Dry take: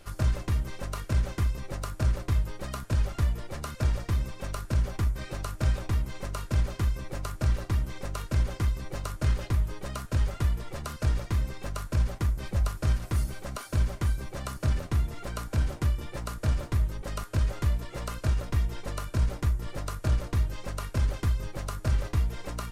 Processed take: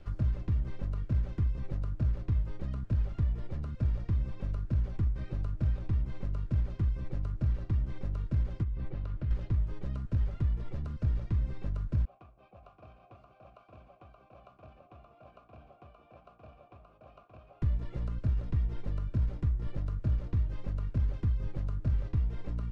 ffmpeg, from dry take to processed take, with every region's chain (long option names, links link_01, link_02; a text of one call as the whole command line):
ffmpeg -i in.wav -filter_complex "[0:a]asettb=1/sr,asplit=3[link_01][link_02][link_03];[link_01]atrim=end=8.634[link_04];[link_02]atrim=start=8.63:end=9.31,asetpts=PTS-STARTPTS,afade=type=in:duration=0.004:curve=qsin,afade=type=out:start_time=0.676:duration=0.004:curve=qsin,lowpass=3300,acompressor=threshold=-32dB:ratio=4:attack=3.2:release=140:knee=1:detection=peak[link_05];[link_03]atrim=start=9.306[link_06];[link_04][link_05]acrossfade=duration=0.004:curve1=hsin:curve2=qsin[link_07];[link_07][link_06]acrossfade=duration=0.004:curve1=qsin:curve2=hsin,asettb=1/sr,asplit=3[link_08][link_09][link_10];[link_08]atrim=end=12.054[link_11];[link_09]atrim=start=12.05:end=17.62,asetpts=PTS-STARTPTS,afade=type=in:duration=0.004:curve=qsin,afade=type=out:start_time=5.566:duration=0.004:curve=qsin,asplit=3[link_12][link_13][link_14];[link_12]bandpass=frequency=730:width_type=q:width=8,volume=0dB[link_15];[link_13]bandpass=frequency=1090:width_type=q:width=8,volume=-6dB[link_16];[link_14]bandpass=frequency=2440:width_type=q:width=8,volume=-9dB[link_17];[link_15][link_16][link_17]amix=inputs=3:normalize=0,aecho=1:1:575:0.562,atrim=end_sample=245637[link_18];[link_10]atrim=start=17.616[link_19];[link_11][link_18]acrossfade=duration=0.004:curve1=hsin:curve2=qsin[link_20];[link_20][link_19]acrossfade=duration=0.004:curve1=qsin:curve2=hsin,acrossover=split=340|2200[link_21][link_22][link_23];[link_21]acompressor=threshold=-29dB:ratio=4[link_24];[link_22]acompressor=threshold=-47dB:ratio=4[link_25];[link_23]acompressor=threshold=-53dB:ratio=4[link_26];[link_24][link_25][link_26]amix=inputs=3:normalize=0,lowpass=3800,lowshelf=frequency=370:gain=11.5,volume=-8dB" out.wav